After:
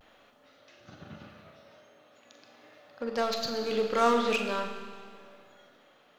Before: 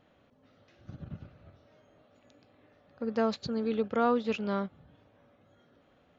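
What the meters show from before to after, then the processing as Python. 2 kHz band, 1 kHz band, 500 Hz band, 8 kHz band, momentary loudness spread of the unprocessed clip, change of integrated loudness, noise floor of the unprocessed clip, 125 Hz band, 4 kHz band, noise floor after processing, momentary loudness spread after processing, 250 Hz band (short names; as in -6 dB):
+7.0 dB, +4.5 dB, +2.0 dB, n/a, 19 LU, +2.5 dB, -66 dBFS, -6.0 dB, +9.5 dB, -61 dBFS, 23 LU, -3.0 dB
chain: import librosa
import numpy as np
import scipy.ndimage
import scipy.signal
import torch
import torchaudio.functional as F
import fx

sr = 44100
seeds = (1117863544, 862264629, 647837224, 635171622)

p1 = fx.highpass(x, sr, hz=840.0, slope=6)
p2 = fx.high_shelf(p1, sr, hz=5500.0, db=4.5)
p3 = 10.0 ** (-34.5 / 20.0) * (np.abs((p2 / 10.0 ** (-34.5 / 20.0) + 3.0) % 4.0 - 2.0) - 1.0)
p4 = p2 + (p3 * librosa.db_to_amplitude(-4.5))
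p5 = fx.vibrato(p4, sr, rate_hz=0.42, depth_cents=30.0)
p6 = fx.doubler(p5, sr, ms=43.0, db=-10.5)
p7 = fx.rev_schroeder(p6, sr, rt60_s=1.8, comb_ms=26, drr_db=4.5)
p8 = p7 * (1.0 - 0.28 / 2.0 + 0.28 / 2.0 * np.cos(2.0 * np.pi * 0.74 * (np.arange(len(p7)) / sr)))
y = p8 * librosa.db_to_amplitude(5.5)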